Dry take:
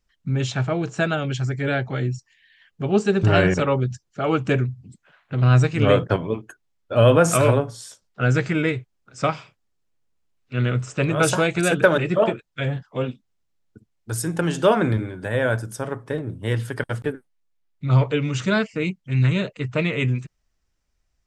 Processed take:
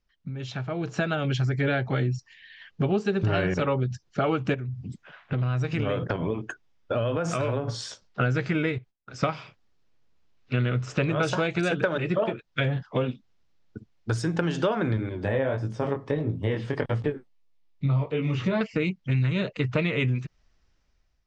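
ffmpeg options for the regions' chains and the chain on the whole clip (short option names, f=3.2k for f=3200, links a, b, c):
-filter_complex "[0:a]asettb=1/sr,asplit=3[a][b][c];[a]atrim=end=4.544[d];[b]atrim=start=4.54:end=7.68,asetpts=PTS-STARTPTS,afade=t=in:d=0.004:c=qsin,afade=t=out:st=3.136:d=0.004:c=qsin,bandreject=f=4.2k:w=13,acompressor=threshold=-30dB:ratio=4:attack=3.2:release=140:knee=1:detection=peak[e];[c]atrim=start=7.676[f];[d][e]acrossfade=d=0.004:c1=hsin:c2=qsin[g];[g][f]acrossfade=d=0.004:c1=qsin:c2=hsin,asettb=1/sr,asplit=3[h][i][j];[h]atrim=end=8.784[k];[i]atrim=start=8.78:end=9.23,asetpts=PTS-STARTPTS,afade=t=in:d=0.004:c=qsin,afade=t=out:st=0.446:d=0.004:c=qsin,agate=range=-33dB:threshold=-57dB:ratio=3:release=100:detection=peak,acompressor=threshold=-43dB:ratio=3:attack=3.2:release=140:knee=1:detection=peak[l];[j]atrim=start=9.226[m];[k][l]acrossfade=d=0.004:c1=hsin:c2=qsin[n];[n][m]acrossfade=d=0.004:c1=qsin:c2=hsin,asettb=1/sr,asplit=3[o][p][q];[o]atrim=end=15.094[r];[p]atrim=start=15.09:end=18.61,asetpts=PTS-STARTPTS,afade=t=in:d=0.004:c=qsin,afade=t=out:st=3.516:d=0.004:c=qsin,equalizer=f=1.5k:w=4.3:g=-10,flanger=delay=18.5:depth=3.8:speed=1.6,acrossover=split=2700[s][t];[t]acompressor=threshold=-53dB:ratio=4:attack=1:release=60[u];[s][u]amix=inputs=2:normalize=0[v];[q]atrim=start=18.606[w];[r][v]acrossfade=d=0.004:c1=hsin:c2=qsin[x];[x][w]acrossfade=d=0.004:c1=qsin:c2=hsin,acompressor=threshold=-30dB:ratio=6,lowpass=f=5.7k:w=0.5412,lowpass=f=5.7k:w=1.3066,dynaudnorm=f=320:g=5:m=11dB,volume=-3.5dB"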